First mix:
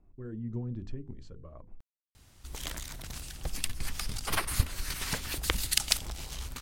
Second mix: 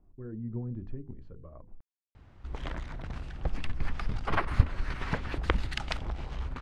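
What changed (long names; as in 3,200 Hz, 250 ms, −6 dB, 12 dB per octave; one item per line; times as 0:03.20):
background +5.0 dB
master: add low-pass filter 1,600 Hz 12 dB per octave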